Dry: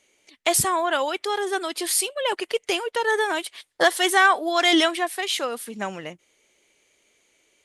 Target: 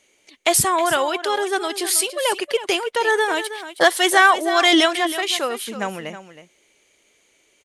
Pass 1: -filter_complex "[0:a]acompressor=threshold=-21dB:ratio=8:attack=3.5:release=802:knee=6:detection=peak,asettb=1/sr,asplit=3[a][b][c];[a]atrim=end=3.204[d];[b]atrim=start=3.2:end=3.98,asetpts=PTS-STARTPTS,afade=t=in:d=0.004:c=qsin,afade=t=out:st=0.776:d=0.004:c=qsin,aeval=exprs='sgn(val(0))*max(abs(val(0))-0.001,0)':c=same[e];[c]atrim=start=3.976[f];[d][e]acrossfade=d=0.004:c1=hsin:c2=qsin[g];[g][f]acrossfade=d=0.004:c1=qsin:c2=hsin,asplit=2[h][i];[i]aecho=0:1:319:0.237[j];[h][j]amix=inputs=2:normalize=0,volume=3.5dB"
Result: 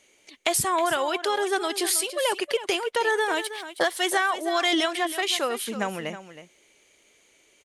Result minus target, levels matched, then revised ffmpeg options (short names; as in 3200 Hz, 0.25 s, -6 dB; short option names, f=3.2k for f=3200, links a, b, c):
compressor: peak gain reduction +12 dB
-filter_complex "[0:a]asettb=1/sr,asplit=3[a][b][c];[a]atrim=end=3.204[d];[b]atrim=start=3.2:end=3.98,asetpts=PTS-STARTPTS,afade=t=in:d=0.004:c=qsin,afade=t=out:st=0.776:d=0.004:c=qsin,aeval=exprs='sgn(val(0))*max(abs(val(0))-0.001,0)':c=same[e];[c]atrim=start=3.976[f];[d][e]acrossfade=d=0.004:c1=hsin:c2=qsin[g];[g][f]acrossfade=d=0.004:c1=qsin:c2=hsin,asplit=2[h][i];[i]aecho=0:1:319:0.237[j];[h][j]amix=inputs=2:normalize=0,volume=3.5dB"